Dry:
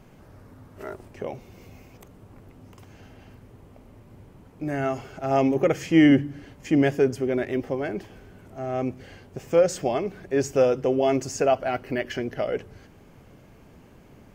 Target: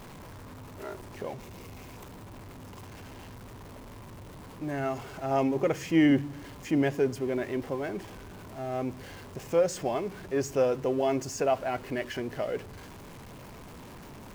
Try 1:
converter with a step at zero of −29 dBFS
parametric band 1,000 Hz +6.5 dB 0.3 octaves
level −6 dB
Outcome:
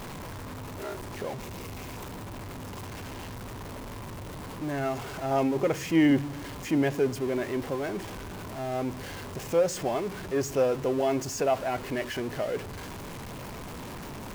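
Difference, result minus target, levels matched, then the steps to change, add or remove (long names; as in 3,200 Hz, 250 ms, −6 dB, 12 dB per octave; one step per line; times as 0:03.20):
converter with a step at zero: distortion +7 dB
change: converter with a step at zero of −37 dBFS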